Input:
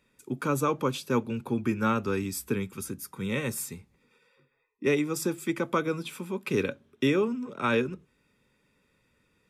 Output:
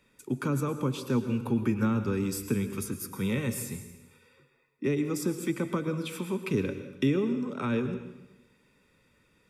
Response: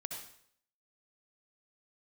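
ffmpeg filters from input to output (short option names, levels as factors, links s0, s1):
-filter_complex "[0:a]acrossover=split=300[s0][s1];[s1]acompressor=threshold=0.0141:ratio=6[s2];[s0][s2]amix=inputs=2:normalize=0,asplit=2[s3][s4];[1:a]atrim=start_sample=2205,asetrate=26460,aresample=44100[s5];[s4][s5]afir=irnorm=-1:irlink=0,volume=0.473[s6];[s3][s6]amix=inputs=2:normalize=0"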